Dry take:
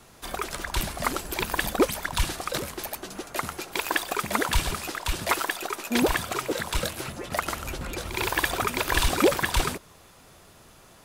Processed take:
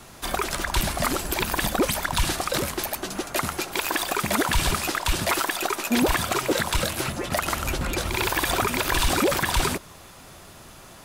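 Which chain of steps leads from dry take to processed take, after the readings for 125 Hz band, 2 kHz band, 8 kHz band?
+4.0 dB, +2.0 dB, +4.5 dB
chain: peaking EQ 460 Hz -4.5 dB 0.23 oct; peak limiter -19 dBFS, peak gain reduction 11 dB; trim +7 dB

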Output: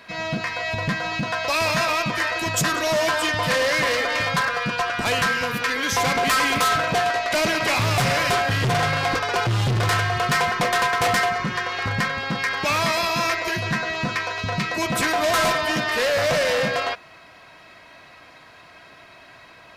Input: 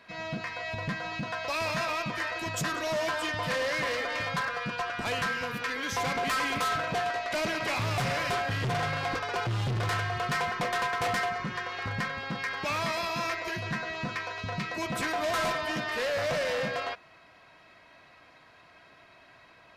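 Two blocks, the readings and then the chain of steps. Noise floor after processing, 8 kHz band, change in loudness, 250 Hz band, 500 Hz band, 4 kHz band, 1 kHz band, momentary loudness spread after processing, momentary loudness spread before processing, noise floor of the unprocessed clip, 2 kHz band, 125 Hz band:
-47 dBFS, +12.0 dB, +9.0 dB, +8.5 dB, +8.5 dB, +10.5 dB, +8.5 dB, 6 LU, 6 LU, -56 dBFS, +9.0 dB, +8.5 dB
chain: treble shelf 5.3 kHz +5.5 dB; trim +8.5 dB

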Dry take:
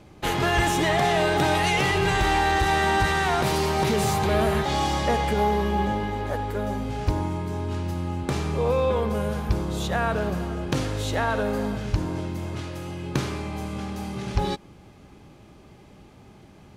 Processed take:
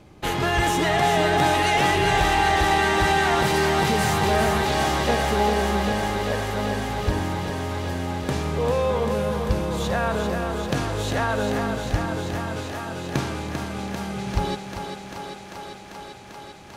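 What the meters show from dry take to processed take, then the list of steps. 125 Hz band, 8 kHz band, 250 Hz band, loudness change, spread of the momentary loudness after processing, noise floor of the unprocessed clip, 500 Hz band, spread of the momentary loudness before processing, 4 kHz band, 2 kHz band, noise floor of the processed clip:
0.0 dB, +2.5 dB, +1.0 dB, +2.0 dB, 14 LU, -50 dBFS, +1.5 dB, 10 LU, +3.0 dB, +2.5 dB, -41 dBFS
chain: thinning echo 394 ms, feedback 84%, high-pass 180 Hz, level -6 dB

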